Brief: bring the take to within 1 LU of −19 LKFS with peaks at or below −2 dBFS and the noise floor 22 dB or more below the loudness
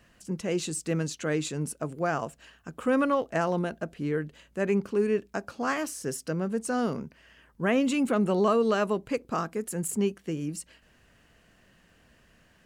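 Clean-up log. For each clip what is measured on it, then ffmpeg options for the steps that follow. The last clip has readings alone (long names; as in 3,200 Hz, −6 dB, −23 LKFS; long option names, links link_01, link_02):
integrated loudness −29.0 LKFS; sample peak −13.0 dBFS; target loudness −19.0 LKFS
→ -af "volume=10dB"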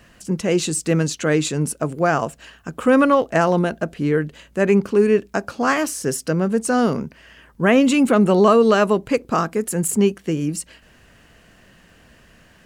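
integrated loudness −19.0 LKFS; sample peak −3.0 dBFS; background noise floor −52 dBFS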